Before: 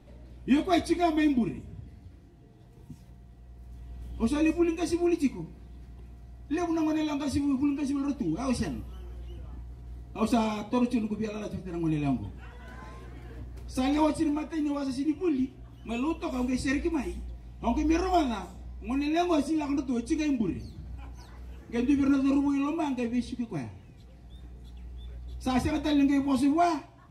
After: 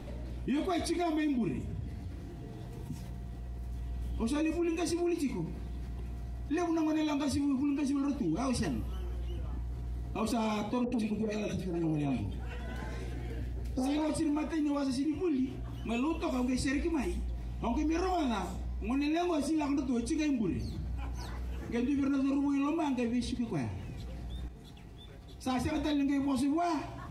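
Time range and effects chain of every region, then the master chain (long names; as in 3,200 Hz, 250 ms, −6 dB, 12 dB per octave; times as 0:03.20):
0:10.84–0:14.09: parametric band 1,100 Hz −10.5 dB 0.28 octaves + multiband delay without the direct sound lows, highs 80 ms, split 1,300 Hz + saturating transformer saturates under 410 Hz
0:24.48–0:25.75: mains-hum notches 60/120/180/240/300/360/420/480/540/600 Hz + expander for the loud parts, over −49 dBFS
whole clip: brickwall limiter −21.5 dBFS; envelope flattener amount 50%; level −3.5 dB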